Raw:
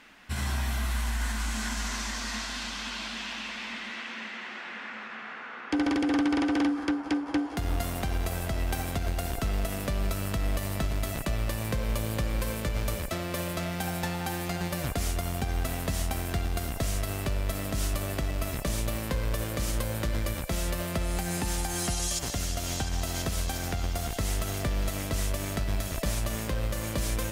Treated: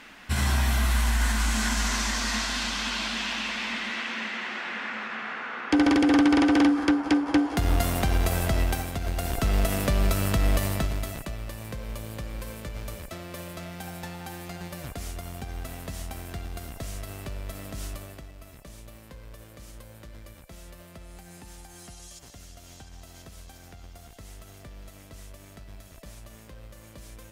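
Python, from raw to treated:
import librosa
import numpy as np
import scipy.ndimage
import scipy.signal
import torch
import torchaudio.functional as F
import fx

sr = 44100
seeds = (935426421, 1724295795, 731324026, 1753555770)

y = fx.gain(x, sr, db=fx.line((8.6, 6.0), (8.91, -1.5), (9.58, 6.0), (10.6, 6.0), (11.37, -6.5), (17.9, -6.5), (18.33, -16.0)))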